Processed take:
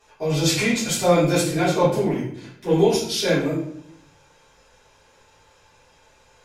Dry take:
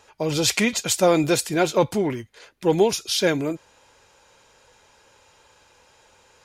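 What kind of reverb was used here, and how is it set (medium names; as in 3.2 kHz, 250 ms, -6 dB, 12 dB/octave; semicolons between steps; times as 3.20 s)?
simulated room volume 110 m³, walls mixed, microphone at 3.4 m; trim -12 dB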